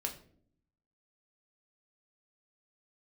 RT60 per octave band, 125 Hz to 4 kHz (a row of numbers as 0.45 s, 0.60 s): 1.1 s, 1.0 s, 0.70 s, 0.45 s, 0.40 s, 0.35 s